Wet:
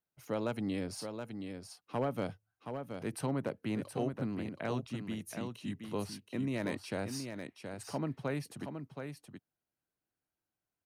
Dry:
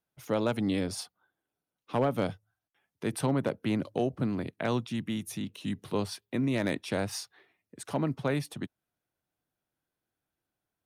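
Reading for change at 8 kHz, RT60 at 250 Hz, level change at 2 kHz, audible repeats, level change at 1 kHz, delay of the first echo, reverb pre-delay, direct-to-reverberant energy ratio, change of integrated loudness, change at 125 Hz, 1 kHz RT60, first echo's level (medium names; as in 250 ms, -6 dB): -5.5 dB, no reverb, -5.5 dB, 1, -5.5 dB, 723 ms, no reverb, no reverb, -6.5 dB, -5.5 dB, no reverb, -7.0 dB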